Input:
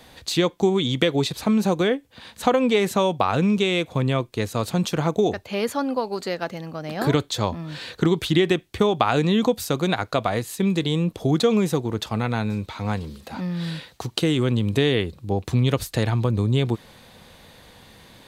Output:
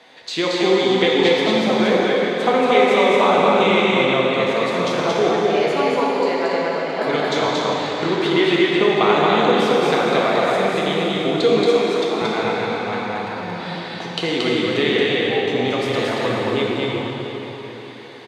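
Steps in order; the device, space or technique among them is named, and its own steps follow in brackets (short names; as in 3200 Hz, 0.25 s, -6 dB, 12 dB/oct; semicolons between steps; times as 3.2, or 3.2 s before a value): station announcement (BPF 320–4700 Hz; bell 2100 Hz +4.5 dB 0.27 oct; loudspeakers at several distances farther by 78 m -2 dB, 98 m -11 dB; reverb RT60 4.2 s, pre-delay 3 ms, DRR -4 dB); 11.64–12.22 HPF 260 Hz 12 dB/oct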